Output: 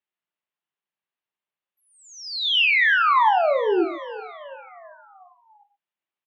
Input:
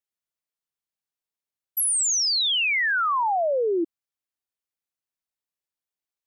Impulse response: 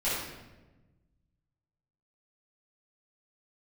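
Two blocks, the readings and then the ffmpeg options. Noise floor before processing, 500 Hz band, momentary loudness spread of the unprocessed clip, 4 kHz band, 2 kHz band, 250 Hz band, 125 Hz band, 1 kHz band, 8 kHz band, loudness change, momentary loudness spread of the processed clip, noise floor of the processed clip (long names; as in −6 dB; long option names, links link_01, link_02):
below −85 dBFS, +2.5 dB, 8 LU, 0.0 dB, +5.0 dB, +3.5 dB, can't be measured, +5.5 dB, below −20 dB, +3.0 dB, 20 LU, below −85 dBFS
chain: -filter_complex "[0:a]highpass=240,equalizer=frequency=270:width_type=q:width=4:gain=-8,equalizer=frequency=490:width_type=q:width=4:gain=-9,equalizer=frequency=710:width_type=q:width=4:gain=-5,equalizer=frequency=1400:width_type=q:width=4:gain=-5,equalizer=frequency=2200:width_type=q:width=4:gain=-4,lowpass=frequency=2900:width=0.5412,lowpass=frequency=2900:width=1.3066,asplit=6[link_01][link_02][link_03][link_04][link_05][link_06];[link_02]adelay=358,afreqshift=95,volume=-15.5dB[link_07];[link_03]adelay=716,afreqshift=190,volume=-20.9dB[link_08];[link_04]adelay=1074,afreqshift=285,volume=-26.2dB[link_09];[link_05]adelay=1432,afreqshift=380,volume=-31.6dB[link_10];[link_06]adelay=1790,afreqshift=475,volume=-36.9dB[link_11];[link_01][link_07][link_08][link_09][link_10][link_11]amix=inputs=6:normalize=0,asplit=2[link_12][link_13];[1:a]atrim=start_sample=2205,atrim=end_sample=6174[link_14];[link_13][link_14]afir=irnorm=-1:irlink=0,volume=-14.5dB[link_15];[link_12][link_15]amix=inputs=2:normalize=0,volume=6.5dB"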